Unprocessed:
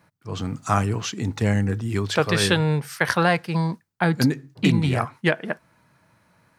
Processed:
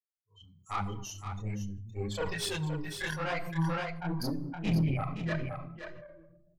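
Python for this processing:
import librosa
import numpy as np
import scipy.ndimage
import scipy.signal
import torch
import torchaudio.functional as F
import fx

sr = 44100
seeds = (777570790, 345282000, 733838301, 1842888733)

p1 = fx.bin_expand(x, sr, power=3.0)
p2 = fx.tube_stage(p1, sr, drive_db=23.0, bias=0.75)
p3 = fx.room_shoebox(p2, sr, seeds[0], volume_m3=1000.0, walls='furnished', distance_m=0.55)
p4 = fx.transient(p3, sr, attack_db=-8, sustain_db=11, at=(4.64, 5.29))
p5 = fx.chorus_voices(p4, sr, voices=2, hz=1.2, base_ms=27, depth_ms=3.5, mix_pct=60)
p6 = fx.hum_notches(p5, sr, base_hz=60, count=5)
p7 = p6 + fx.echo_single(p6, sr, ms=519, db=-8.5, dry=0)
y = fx.sustainer(p7, sr, db_per_s=37.0)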